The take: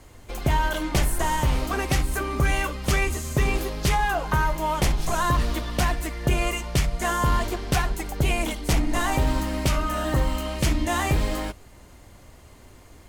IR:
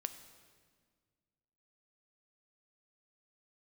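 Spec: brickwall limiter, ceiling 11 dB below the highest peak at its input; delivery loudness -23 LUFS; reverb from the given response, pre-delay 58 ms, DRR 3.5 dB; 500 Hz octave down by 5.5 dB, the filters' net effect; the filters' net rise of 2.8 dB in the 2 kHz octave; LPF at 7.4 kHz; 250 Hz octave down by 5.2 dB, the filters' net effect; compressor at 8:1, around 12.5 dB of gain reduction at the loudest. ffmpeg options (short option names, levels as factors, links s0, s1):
-filter_complex "[0:a]lowpass=7400,equalizer=f=250:t=o:g=-5.5,equalizer=f=500:t=o:g=-6.5,equalizer=f=2000:t=o:g=4,acompressor=threshold=0.0282:ratio=8,alimiter=level_in=2:limit=0.0631:level=0:latency=1,volume=0.501,asplit=2[s0][s1];[1:a]atrim=start_sample=2205,adelay=58[s2];[s1][s2]afir=irnorm=-1:irlink=0,volume=0.794[s3];[s0][s3]amix=inputs=2:normalize=0,volume=5.62"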